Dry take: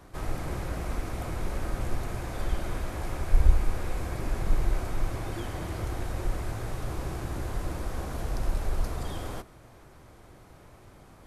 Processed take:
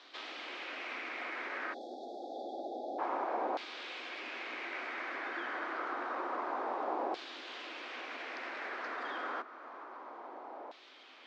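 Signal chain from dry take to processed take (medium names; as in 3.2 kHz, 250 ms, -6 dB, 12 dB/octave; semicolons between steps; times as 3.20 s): steep high-pass 240 Hz 72 dB/octave; spectral selection erased 1.74–2.99 s, 850–3300 Hz; low-pass 5.2 kHz 24 dB/octave; bass shelf 410 Hz +8.5 dB; compression 1.5:1, threshold -45 dBFS, peak gain reduction 5.5 dB; LFO band-pass saw down 0.28 Hz 770–3700 Hz; trim +13.5 dB; MP3 64 kbps 24 kHz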